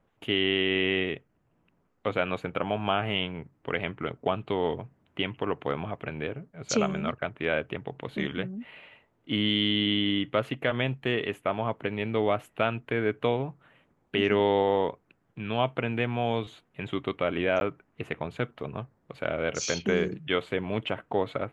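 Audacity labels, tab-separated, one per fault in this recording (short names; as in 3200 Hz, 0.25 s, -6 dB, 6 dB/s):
17.600000	17.610000	gap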